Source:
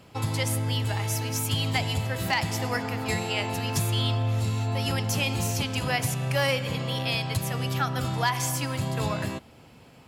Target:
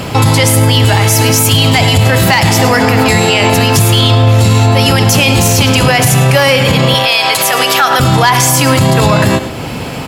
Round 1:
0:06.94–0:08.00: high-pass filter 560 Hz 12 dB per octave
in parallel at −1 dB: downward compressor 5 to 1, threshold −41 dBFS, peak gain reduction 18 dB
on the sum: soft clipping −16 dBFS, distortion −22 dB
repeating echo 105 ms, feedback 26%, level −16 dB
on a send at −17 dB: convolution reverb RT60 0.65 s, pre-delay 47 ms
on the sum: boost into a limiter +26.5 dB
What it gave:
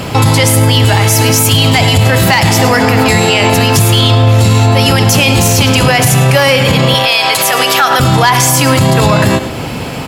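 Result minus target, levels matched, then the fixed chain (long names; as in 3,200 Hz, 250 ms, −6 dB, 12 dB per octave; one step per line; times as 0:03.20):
downward compressor: peak gain reduction −6 dB
0:06.94–0:08.00: high-pass filter 560 Hz 12 dB per octave
in parallel at −1 dB: downward compressor 5 to 1, threshold −48.5 dBFS, peak gain reduction 24 dB
on the sum: soft clipping −16 dBFS, distortion −23 dB
repeating echo 105 ms, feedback 26%, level −16 dB
on a send at −17 dB: convolution reverb RT60 0.65 s, pre-delay 47 ms
on the sum: boost into a limiter +26.5 dB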